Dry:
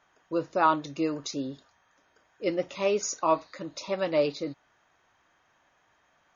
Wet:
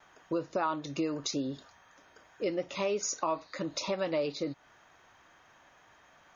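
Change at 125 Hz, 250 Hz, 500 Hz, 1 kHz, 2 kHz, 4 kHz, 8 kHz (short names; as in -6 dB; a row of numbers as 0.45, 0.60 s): -1.5 dB, -3.0 dB, -5.0 dB, -7.5 dB, -5.0 dB, -0.5 dB, n/a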